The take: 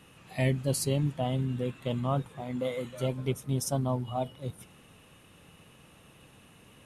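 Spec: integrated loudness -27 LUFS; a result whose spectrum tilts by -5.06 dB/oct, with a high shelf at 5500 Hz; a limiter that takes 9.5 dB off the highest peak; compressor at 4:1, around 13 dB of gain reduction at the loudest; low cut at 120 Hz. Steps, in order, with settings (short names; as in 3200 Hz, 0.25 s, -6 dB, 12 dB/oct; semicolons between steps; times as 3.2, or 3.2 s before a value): HPF 120 Hz; high shelf 5500 Hz +5.5 dB; compressor 4:1, threshold -40 dBFS; gain +19.5 dB; limiter -15 dBFS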